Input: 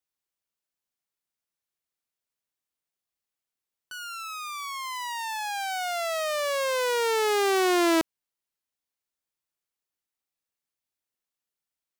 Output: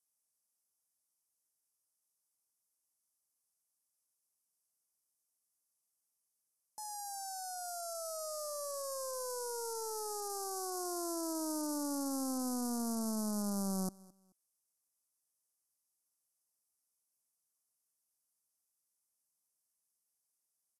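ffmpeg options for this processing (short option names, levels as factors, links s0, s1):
-filter_complex "[0:a]highpass=f=260:p=1,equalizer=f=670:t=o:w=0.33:g=-6.5,acrusher=bits=6:mode=log:mix=0:aa=0.000001,asoftclip=type=tanh:threshold=0.0398,aexciter=amount=3:drive=5.7:freq=8600,asplit=2[s0][s1];[s1]aecho=0:1:125|250:0.0708|0.0184[s2];[s0][s2]amix=inputs=2:normalize=0,asetrate=25442,aresample=44100,asuperstop=centerf=2500:order=8:qfactor=0.74,volume=0.501"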